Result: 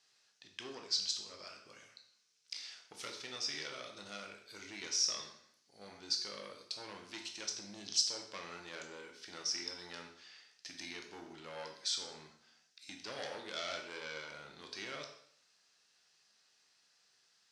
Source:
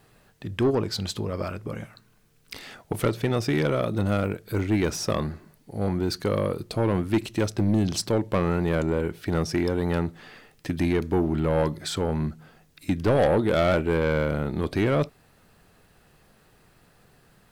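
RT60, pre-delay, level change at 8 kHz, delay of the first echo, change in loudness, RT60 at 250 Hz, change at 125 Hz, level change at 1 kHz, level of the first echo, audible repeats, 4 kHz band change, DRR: 0.60 s, 7 ms, -1.0 dB, no echo, -14.5 dB, 0.60 s, -37.0 dB, -18.5 dB, no echo, no echo, -1.5 dB, 2.5 dB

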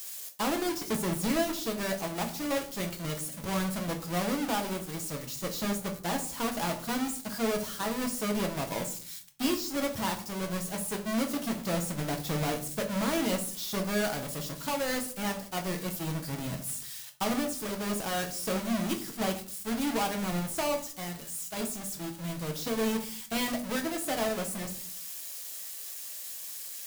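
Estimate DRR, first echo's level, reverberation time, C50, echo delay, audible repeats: 3.0 dB, no echo, 0.45 s, 11.5 dB, no echo, no echo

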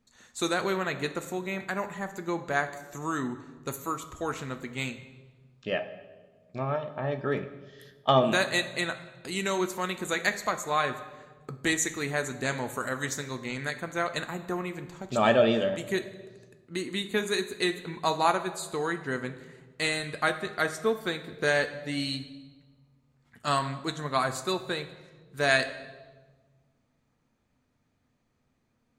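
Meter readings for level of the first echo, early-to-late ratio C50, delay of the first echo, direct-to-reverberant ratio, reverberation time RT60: no echo, 12.0 dB, no echo, 8.5 dB, 1.4 s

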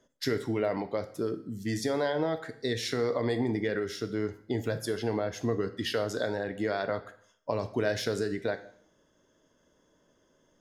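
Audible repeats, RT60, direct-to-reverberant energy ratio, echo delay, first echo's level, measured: no echo, 0.65 s, 9.5 dB, no echo, no echo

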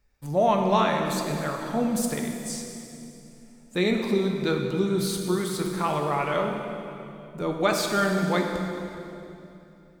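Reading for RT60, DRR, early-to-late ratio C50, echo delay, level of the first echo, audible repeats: 3.0 s, 2.0 dB, 3.5 dB, no echo, no echo, no echo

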